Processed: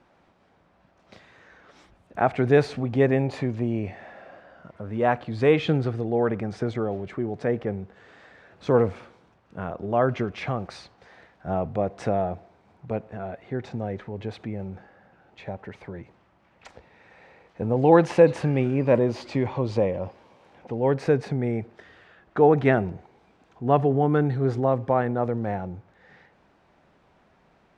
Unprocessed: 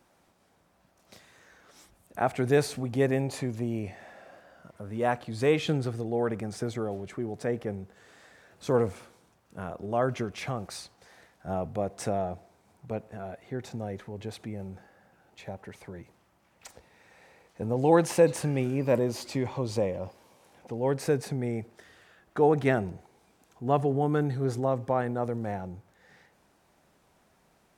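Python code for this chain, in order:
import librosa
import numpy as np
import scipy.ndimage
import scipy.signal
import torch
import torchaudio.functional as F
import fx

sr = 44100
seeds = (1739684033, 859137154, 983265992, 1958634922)

y = scipy.signal.sosfilt(scipy.signal.butter(2, 3200.0, 'lowpass', fs=sr, output='sos'), x)
y = y * librosa.db_to_amplitude(5.0)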